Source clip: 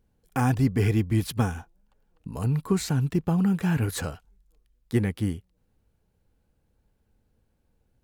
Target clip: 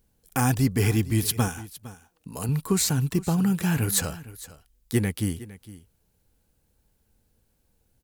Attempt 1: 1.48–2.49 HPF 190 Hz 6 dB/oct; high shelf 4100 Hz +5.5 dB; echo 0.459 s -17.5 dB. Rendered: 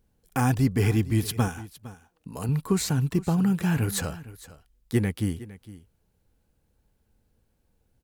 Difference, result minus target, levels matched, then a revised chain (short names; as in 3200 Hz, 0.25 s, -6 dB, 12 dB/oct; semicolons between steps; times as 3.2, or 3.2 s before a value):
8000 Hz band -6.0 dB
1.48–2.49 HPF 190 Hz 6 dB/oct; high shelf 4100 Hz +14 dB; echo 0.459 s -17.5 dB